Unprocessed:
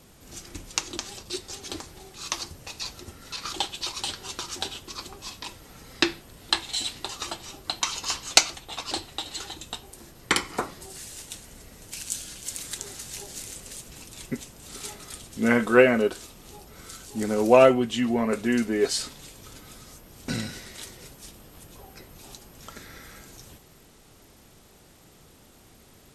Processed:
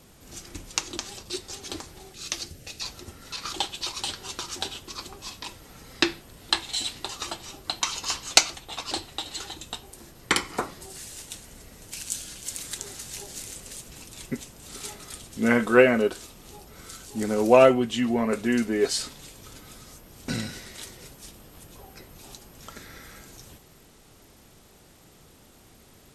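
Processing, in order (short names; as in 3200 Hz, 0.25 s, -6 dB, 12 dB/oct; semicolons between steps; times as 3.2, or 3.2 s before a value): 2.13–2.81 bell 1000 Hz -14.5 dB 0.6 oct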